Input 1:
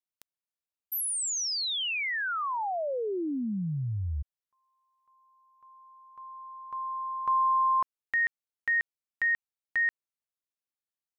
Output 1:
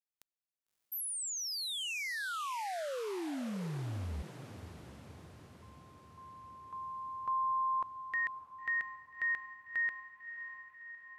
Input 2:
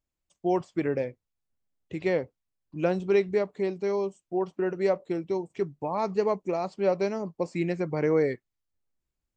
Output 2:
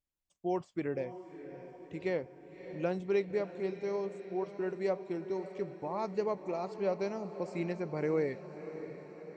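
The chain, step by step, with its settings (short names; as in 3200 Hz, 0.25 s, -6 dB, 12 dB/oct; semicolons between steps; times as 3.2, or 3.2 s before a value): diffused feedback echo 0.609 s, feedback 62%, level -12 dB; gain -7.5 dB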